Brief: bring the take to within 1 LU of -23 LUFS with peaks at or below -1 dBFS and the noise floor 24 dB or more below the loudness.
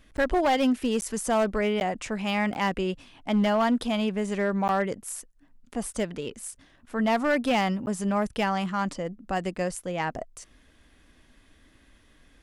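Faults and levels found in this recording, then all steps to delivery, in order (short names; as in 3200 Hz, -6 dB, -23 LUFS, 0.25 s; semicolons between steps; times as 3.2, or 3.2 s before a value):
clipped 1.2%; flat tops at -18.0 dBFS; dropouts 6; longest dropout 9.9 ms; loudness -27.0 LUFS; peak -18.0 dBFS; loudness target -23.0 LUFS
-> clip repair -18 dBFS; interpolate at 0.17/1.01/1.8/2.54/4.68/7.86, 9.9 ms; gain +4 dB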